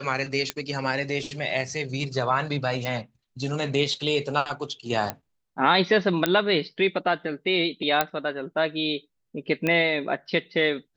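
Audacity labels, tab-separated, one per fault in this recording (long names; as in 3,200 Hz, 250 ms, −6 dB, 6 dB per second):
0.500000	0.500000	click −10 dBFS
2.850000	2.850000	click −16 dBFS
5.100000	5.100000	click −12 dBFS
6.260000	6.260000	click −7 dBFS
8.010000	8.010000	click −6 dBFS
9.670000	9.670000	click −12 dBFS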